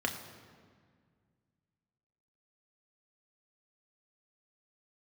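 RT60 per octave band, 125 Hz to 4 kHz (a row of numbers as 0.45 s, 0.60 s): 2.8 s, 2.5 s, 2.0 s, 1.8 s, 1.6 s, 1.3 s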